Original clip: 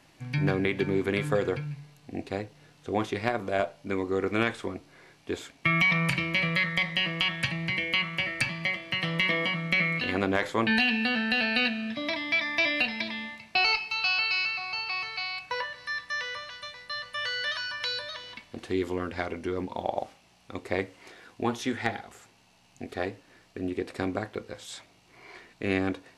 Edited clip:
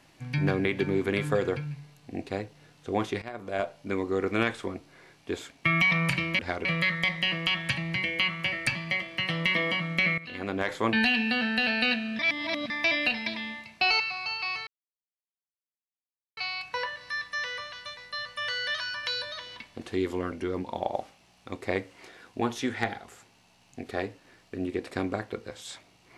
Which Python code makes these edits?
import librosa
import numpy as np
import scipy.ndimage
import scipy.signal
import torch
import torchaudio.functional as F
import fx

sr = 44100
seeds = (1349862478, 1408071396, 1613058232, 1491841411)

y = fx.edit(x, sr, fx.fade_in_from(start_s=3.22, length_s=0.54, floor_db=-16.5),
    fx.fade_in_from(start_s=9.92, length_s=0.68, floor_db=-16.5),
    fx.reverse_span(start_s=11.93, length_s=0.51),
    fx.cut(start_s=13.74, length_s=0.73),
    fx.insert_silence(at_s=15.14, length_s=1.7),
    fx.move(start_s=19.09, length_s=0.26, to_s=6.39), tone=tone)